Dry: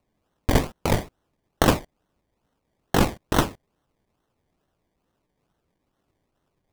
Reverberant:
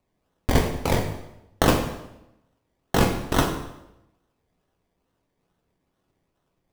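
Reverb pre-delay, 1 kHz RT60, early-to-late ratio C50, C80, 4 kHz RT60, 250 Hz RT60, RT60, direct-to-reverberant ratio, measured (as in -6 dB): 3 ms, 0.85 s, 7.5 dB, 9.5 dB, 0.75 s, 0.95 s, 0.90 s, 2.5 dB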